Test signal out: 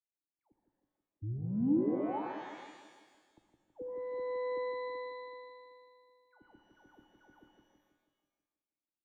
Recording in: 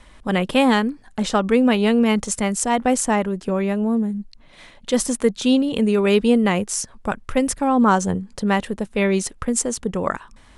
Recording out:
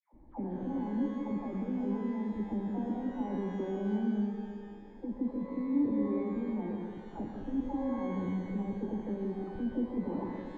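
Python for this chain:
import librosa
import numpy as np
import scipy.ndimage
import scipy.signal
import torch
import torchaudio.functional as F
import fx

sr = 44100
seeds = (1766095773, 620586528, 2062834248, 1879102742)

y = fx.over_compress(x, sr, threshold_db=-23.0, ratio=-1.0)
y = fx.dispersion(y, sr, late='lows', ms=134.0, hz=1000.0)
y = 10.0 ** (-21.5 / 20.0) * np.tanh(y / 10.0 ** (-21.5 / 20.0))
y = fx.formant_cascade(y, sr, vowel='u')
y = fx.echo_split(y, sr, split_hz=860.0, low_ms=162, high_ms=120, feedback_pct=52, wet_db=-5.5)
y = fx.rev_shimmer(y, sr, seeds[0], rt60_s=1.3, semitones=12, shimmer_db=-8, drr_db=5.0)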